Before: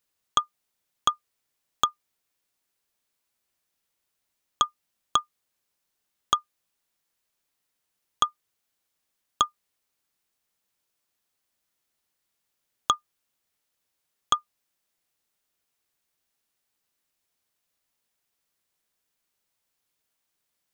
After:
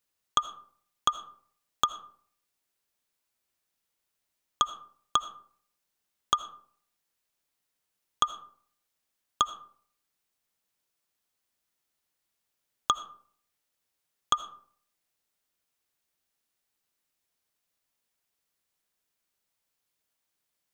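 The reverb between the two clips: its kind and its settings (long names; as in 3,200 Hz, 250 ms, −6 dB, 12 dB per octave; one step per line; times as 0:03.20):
comb and all-pass reverb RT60 0.56 s, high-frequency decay 0.5×, pre-delay 40 ms, DRR 13.5 dB
level −2.5 dB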